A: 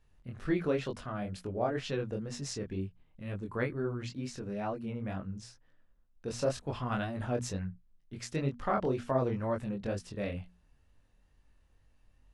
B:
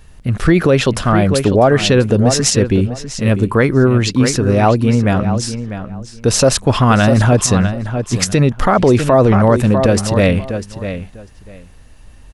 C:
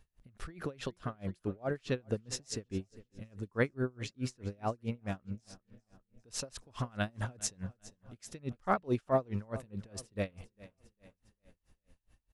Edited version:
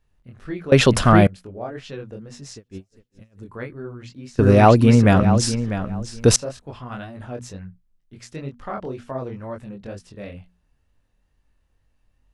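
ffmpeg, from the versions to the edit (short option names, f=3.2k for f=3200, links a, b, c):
-filter_complex "[1:a]asplit=2[a][b];[0:a]asplit=4[c][d][e][f];[c]atrim=end=0.722[g];[a]atrim=start=0.718:end=1.272[h];[d]atrim=start=1.268:end=2.582[i];[2:a]atrim=start=2.578:end=3.442[j];[e]atrim=start=3.438:end=4.392[k];[b]atrim=start=4.388:end=6.362[l];[f]atrim=start=6.358[m];[g][h]acrossfade=d=0.004:c1=hsin:c2=hsin[n];[n][i]acrossfade=d=0.004:c1=hsin:c2=hsin[o];[o][j]acrossfade=d=0.004:c1=hsin:c2=hsin[p];[p][k]acrossfade=d=0.004:c1=hsin:c2=hsin[q];[q][l]acrossfade=d=0.004:c1=hsin:c2=hsin[r];[r][m]acrossfade=d=0.004:c1=hsin:c2=hsin"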